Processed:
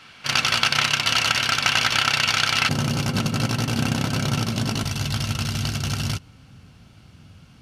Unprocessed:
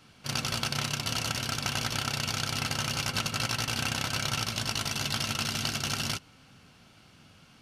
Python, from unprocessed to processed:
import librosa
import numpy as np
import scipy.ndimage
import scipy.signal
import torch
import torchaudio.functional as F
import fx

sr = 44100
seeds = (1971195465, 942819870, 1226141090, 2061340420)

y = fx.peak_eq(x, sr, hz=fx.steps((0.0, 2100.0), (2.69, 210.0), (4.83, 69.0)), db=14.0, octaves=3.0)
y = y * 10.0 ** (1.0 / 20.0)